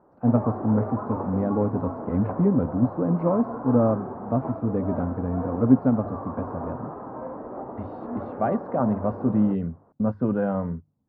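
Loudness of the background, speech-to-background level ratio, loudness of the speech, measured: -34.5 LUFS, 9.5 dB, -25.0 LUFS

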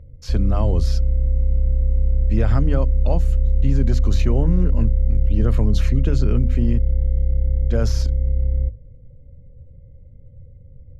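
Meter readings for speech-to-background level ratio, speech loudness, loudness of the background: -4.5 dB, -25.5 LUFS, -21.0 LUFS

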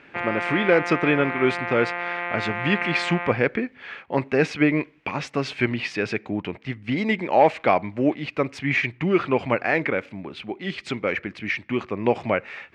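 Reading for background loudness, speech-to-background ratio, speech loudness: -28.0 LUFS, 4.0 dB, -24.0 LUFS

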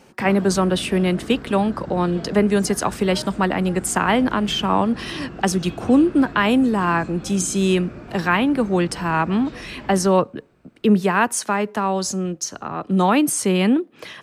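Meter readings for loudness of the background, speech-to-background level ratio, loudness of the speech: -36.0 LUFS, 16.0 dB, -20.0 LUFS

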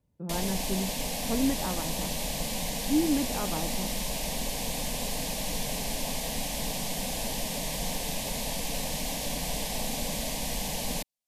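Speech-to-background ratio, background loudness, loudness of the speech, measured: -0.5 dB, -31.5 LUFS, -32.0 LUFS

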